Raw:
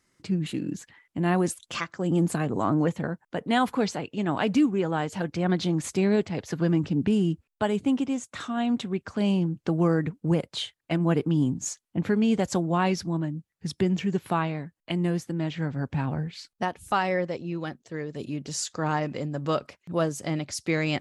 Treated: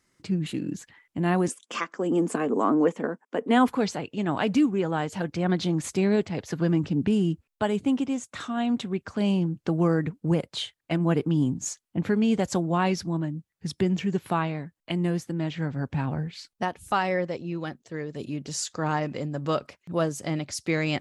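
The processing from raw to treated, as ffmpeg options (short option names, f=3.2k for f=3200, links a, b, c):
-filter_complex "[0:a]asettb=1/sr,asplit=3[a][b][c];[a]atrim=end=1.484[d];[b]atrim=start=1.48:end=3.68,asetpts=PTS-STARTPTS,afade=t=in:d=0.004:c=qsin,afade=t=out:st=2.196:d=0.004:c=qsin,highpass=f=220:w=0.5412,highpass=f=220:w=1.3066,equalizer=f=250:t=q:w=4:g=7,equalizer=f=440:t=q:w=4:g=8,equalizer=f=1.1k:t=q:w=4:g=4,equalizer=f=4.1k:t=q:w=4:g=-9,lowpass=f=9.7k:w=0.5412,lowpass=f=9.7k:w=1.3066[e];[c]atrim=start=3.676[f];[d][e]acrossfade=d=0.004:c1=hsin:c2=qsin[g];[g][f]acrossfade=d=0.004:c1=qsin:c2=hsin"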